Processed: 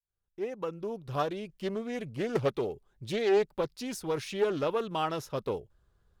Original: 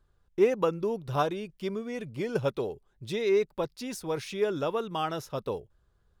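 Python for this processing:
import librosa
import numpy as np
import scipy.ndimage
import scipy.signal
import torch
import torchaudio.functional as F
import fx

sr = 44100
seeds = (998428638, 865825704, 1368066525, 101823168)

y = fx.fade_in_head(x, sr, length_s=1.78)
y = fx.doppler_dist(y, sr, depth_ms=0.3)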